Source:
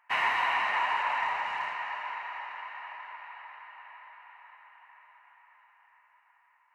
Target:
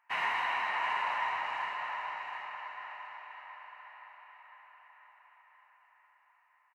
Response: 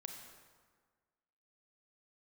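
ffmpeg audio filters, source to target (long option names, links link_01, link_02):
-filter_complex "[0:a]aecho=1:1:724|1448|2172:0.398|0.104|0.0269[link_01];[1:a]atrim=start_sample=2205,afade=type=out:start_time=0.16:duration=0.01,atrim=end_sample=7497[link_02];[link_01][link_02]afir=irnorm=-1:irlink=0"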